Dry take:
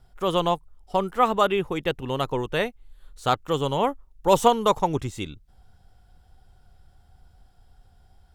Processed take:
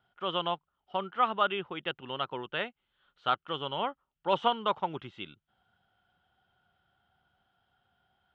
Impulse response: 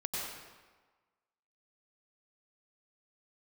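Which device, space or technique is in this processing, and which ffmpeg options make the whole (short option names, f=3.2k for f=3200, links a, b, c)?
kitchen radio: -af "highpass=200,equalizer=f=280:t=q:w=4:g=-5,equalizer=f=460:t=q:w=4:g=-6,equalizer=f=1.4k:t=q:w=4:g=8,equalizer=f=3.1k:t=q:w=4:g=10,lowpass=f=3.4k:w=0.5412,lowpass=f=3.4k:w=1.3066,volume=-8.5dB"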